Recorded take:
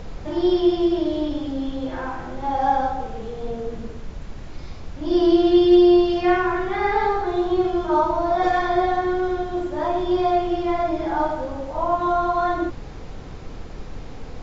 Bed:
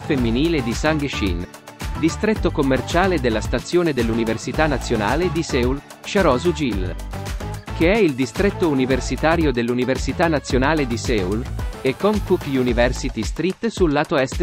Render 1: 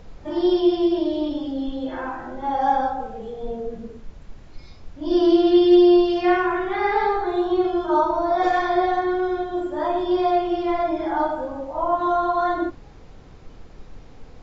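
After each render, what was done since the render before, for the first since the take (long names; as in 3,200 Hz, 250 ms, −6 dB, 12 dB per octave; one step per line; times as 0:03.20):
noise reduction from a noise print 9 dB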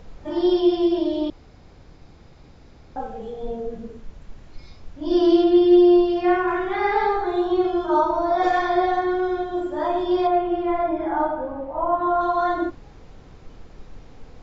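0:01.30–0:02.96: fill with room tone
0:05.44–0:06.48: high-shelf EQ 2,200 Hz −8 dB
0:10.27–0:12.21: low-pass filter 2,200 Hz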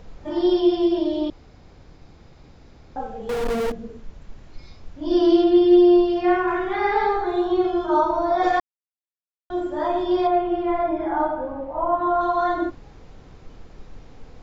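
0:03.29–0:03.72: power curve on the samples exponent 0.35
0:08.60–0:09.50: silence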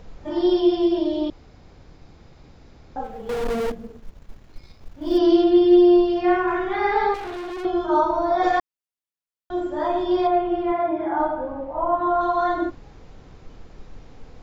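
0:03.04–0:05.18: mu-law and A-law mismatch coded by A
0:07.14–0:07.65: gain into a clipping stage and back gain 30 dB
0:10.72–0:11.19: band-pass filter 100–4,300 Hz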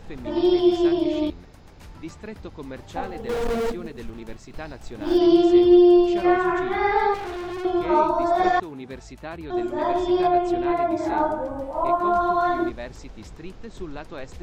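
mix in bed −18.5 dB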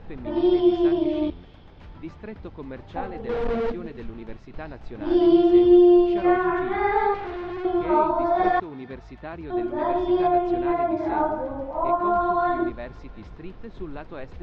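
high-frequency loss of the air 270 metres
delay with a high-pass on its return 344 ms, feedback 57%, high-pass 2,300 Hz, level −16 dB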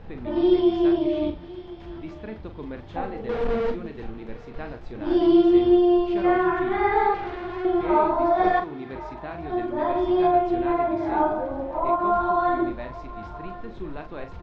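double-tracking delay 41 ms −8 dB
feedback echo with a high-pass in the loop 1,057 ms, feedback 41%, level −16.5 dB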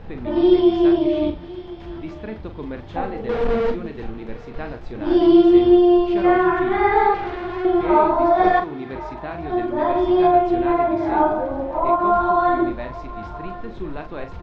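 level +4.5 dB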